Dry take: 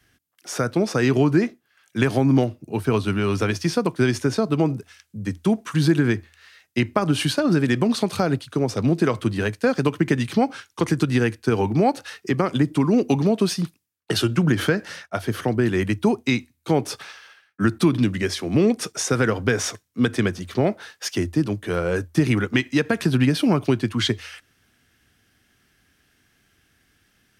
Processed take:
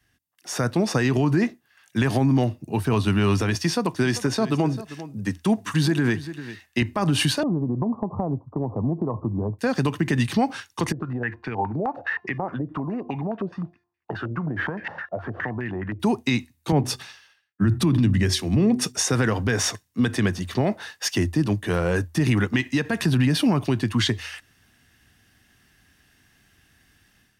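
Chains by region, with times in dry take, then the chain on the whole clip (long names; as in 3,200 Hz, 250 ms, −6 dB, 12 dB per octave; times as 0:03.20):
0:03.55–0:06.82: high-pass filter 170 Hz 6 dB per octave + single-tap delay 394 ms −17 dB
0:07.43–0:09.59: Butterworth low-pass 1,100 Hz 72 dB per octave + downward compressor 2.5 to 1, threshold −26 dBFS
0:10.92–0:16.00: downward compressor 3 to 1, threshold −33 dBFS + hum removal 350 Hz, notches 27 + low-pass on a step sequencer 9.6 Hz 540–2,200 Hz
0:16.72–0:18.98: low-shelf EQ 230 Hz +9.5 dB + hum removal 124.5 Hz, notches 3 + multiband upward and downward expander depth 70%
whole clip: comb filter 1.1 ms, depth 31%; brickwall limiter −14.5 dBFS; automatic gain control gain up to 9 dB; level −6.5 dB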